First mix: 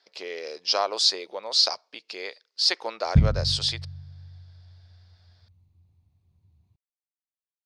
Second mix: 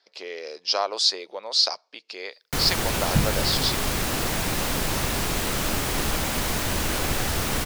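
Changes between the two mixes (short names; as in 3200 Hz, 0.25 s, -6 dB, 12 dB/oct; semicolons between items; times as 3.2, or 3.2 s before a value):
first sound: unmuted; master: add bell 82 Hz -13.5 dB 0.86 oct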